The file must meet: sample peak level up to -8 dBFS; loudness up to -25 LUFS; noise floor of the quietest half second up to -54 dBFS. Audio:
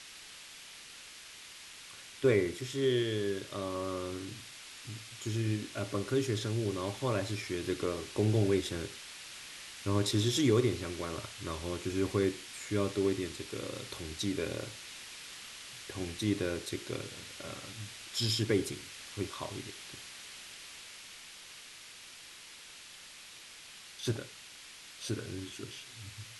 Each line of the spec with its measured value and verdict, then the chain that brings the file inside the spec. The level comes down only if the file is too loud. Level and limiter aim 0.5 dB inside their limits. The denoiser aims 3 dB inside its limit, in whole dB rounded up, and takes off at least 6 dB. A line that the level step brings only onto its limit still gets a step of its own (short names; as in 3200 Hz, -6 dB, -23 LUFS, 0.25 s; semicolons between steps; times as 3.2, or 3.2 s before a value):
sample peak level -15.5 dBFS: OK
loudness -35.0 LUFS: OK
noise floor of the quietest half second -51 dBFS: fail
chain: denoiser 6 dB, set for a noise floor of -51 dBFS